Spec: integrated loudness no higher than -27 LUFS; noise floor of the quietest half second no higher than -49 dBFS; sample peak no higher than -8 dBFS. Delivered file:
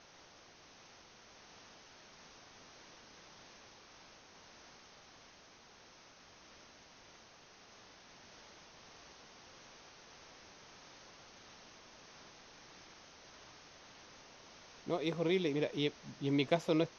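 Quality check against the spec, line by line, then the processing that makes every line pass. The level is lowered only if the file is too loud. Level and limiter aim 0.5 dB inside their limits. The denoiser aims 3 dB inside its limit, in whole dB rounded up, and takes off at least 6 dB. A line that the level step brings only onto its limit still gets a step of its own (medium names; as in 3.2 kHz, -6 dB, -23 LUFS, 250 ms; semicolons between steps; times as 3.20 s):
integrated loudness -35.0 LUFS: pass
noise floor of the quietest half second -60 dBFS: pass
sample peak -15.5 dBFS: pass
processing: none needed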